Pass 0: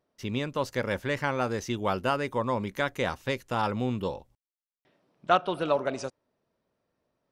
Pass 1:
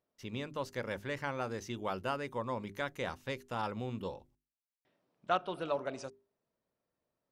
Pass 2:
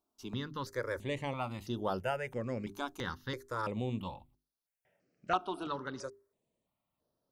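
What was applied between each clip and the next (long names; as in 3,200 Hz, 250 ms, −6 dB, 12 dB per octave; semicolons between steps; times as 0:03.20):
mains-hum notches 50/100/150/200/250/300/350/400 Hz; level −8.5 dB
step-sequenced phaser 3 Hz 520–7,600 Hz; level +4 dB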